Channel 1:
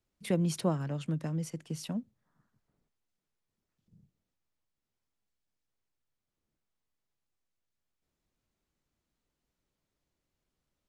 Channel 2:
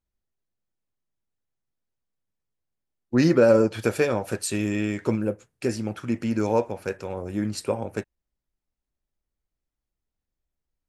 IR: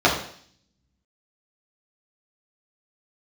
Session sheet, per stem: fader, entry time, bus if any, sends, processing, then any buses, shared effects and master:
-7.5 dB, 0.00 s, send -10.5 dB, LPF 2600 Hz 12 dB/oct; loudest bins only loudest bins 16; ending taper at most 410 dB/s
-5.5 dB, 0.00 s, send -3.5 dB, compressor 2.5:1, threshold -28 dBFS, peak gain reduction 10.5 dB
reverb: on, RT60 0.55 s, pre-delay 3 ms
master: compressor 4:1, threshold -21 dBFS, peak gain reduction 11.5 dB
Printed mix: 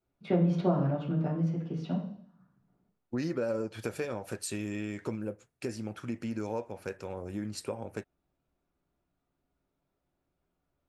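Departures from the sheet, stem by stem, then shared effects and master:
stem 1: missing loudest bins only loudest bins 16; stem 2: send off

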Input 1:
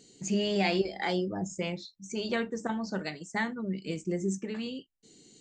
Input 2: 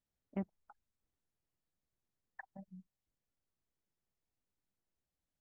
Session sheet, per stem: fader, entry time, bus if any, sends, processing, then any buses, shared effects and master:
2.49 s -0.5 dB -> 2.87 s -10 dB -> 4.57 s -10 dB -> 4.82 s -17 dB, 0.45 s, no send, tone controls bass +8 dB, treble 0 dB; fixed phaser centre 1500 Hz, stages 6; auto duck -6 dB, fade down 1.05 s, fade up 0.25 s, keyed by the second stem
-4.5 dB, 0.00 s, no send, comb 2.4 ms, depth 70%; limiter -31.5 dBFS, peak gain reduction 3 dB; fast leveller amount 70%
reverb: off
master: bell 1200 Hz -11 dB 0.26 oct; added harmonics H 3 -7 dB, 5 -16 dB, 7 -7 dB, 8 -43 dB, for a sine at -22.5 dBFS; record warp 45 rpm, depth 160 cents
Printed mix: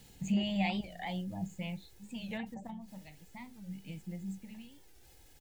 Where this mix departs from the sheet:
stem 1: entry 0.45 s -> 0.00 s; master: missing added harmonics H 3 -7 dB, 5 -16 dB, 7 -7 dB, 8 -43 dB, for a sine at -22.5 dBFS

